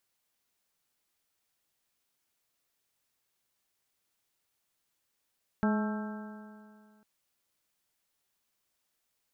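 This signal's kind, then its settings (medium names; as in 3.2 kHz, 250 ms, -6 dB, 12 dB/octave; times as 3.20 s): stretched partials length 1.40 s, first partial 211 Hz, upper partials -11/-11.5/-11/-19/-13/-13 dB, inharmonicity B 0.0028, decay 2.17 s, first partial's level -24 dB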